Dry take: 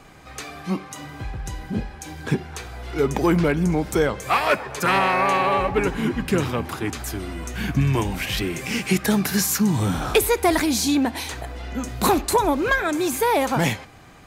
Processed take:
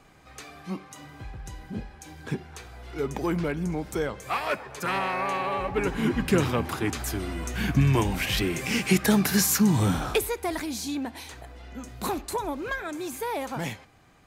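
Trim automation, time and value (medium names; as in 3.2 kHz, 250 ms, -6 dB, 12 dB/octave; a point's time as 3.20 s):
5.57 s -8.5 dB
6.12 s -1 dB
9.90 s -1 dB
10.36 s -11 dB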